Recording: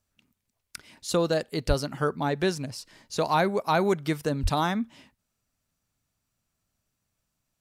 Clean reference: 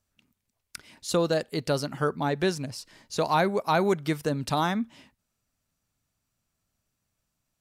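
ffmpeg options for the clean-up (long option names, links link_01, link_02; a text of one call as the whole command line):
ffmpeg -i in.wav -filter_complex "[0:a]asplit=3[link_01][link_02][link_03];[link_01]afade=type=out:start_time=1.67:duration=0.02[link_04];[link_02]highpass=frequency=140:width=0.5412,highpass=frequency=140:width=1.3066,afade=type=in:start_time=1.67:duration=0.02,afade=type=out:start_time=1.79:duration=0.02[link_05];[link_03]afade=type=in:start_time=1.79:duration=0.02[link_06];[link_04][link_05][link_06]amix=inputs=3:normalize=0,asplit=3[link_07][link_08][link_09];[link_07]afade=type=out:start_time=4.42:duration=0.02[link_10];[link_08]highpass=frequency=140:width=0.5412,highpass=frequency=140:width=1.3066,afade=type=in:start_time=4.42:duration=0.02,afade=type=out:start_time=4.54:duration=0.02[link_11];[link_09]afade=type=in:start_time=4.54:duration=0.02[link_12];[link_10][link_11][link_12]amix=inputs=3:normalize=0" out.wav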